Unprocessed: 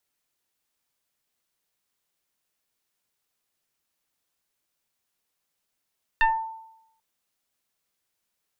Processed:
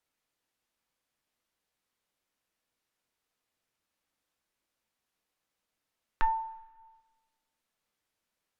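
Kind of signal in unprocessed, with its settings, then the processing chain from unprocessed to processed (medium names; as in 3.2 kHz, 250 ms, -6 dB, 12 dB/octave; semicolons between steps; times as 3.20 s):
FM tone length 0.79 s, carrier 893 Hz, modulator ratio 1.01, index 2, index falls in 0.35 s exponential, decay 0.83 s, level -14 dB
treble shelf 4.3 kHz -9 dB; low-pass that closes with the level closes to 610 Hz, closed at -39.5 dBFS; two-slope reverb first 0.21 s, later 1.6 s, from -18 dB, DRR 10.5 dB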